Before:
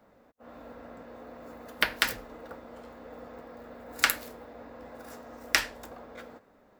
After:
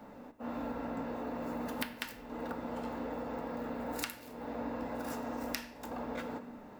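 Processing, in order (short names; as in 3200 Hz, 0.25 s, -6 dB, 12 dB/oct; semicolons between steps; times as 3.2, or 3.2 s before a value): compressor 12:1, threshold -44 dBFS, peak gain reduction 26.5 dB; small resonant body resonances 240/880/2700 Hz, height 9 dB, ringing for 35 ms; reverb RT60 1.0 s, pre-delay 7 ms, DRR 10 dB; gain +6.5 dB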